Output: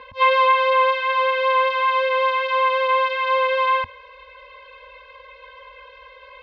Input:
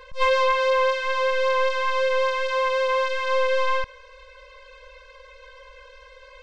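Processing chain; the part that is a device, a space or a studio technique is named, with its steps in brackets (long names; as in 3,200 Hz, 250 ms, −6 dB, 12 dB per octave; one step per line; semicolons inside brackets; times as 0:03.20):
guitar cabinet (loudspeaker in its box 84–3,500 Hz, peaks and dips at 85 Hz +5 dB, 170 Hz −7 dB, 240 Hz +7 dB, 520 Hz −6 dB, 840 Hz +10 dB, 1,400 Hz −8 dB)
level +5.5 dB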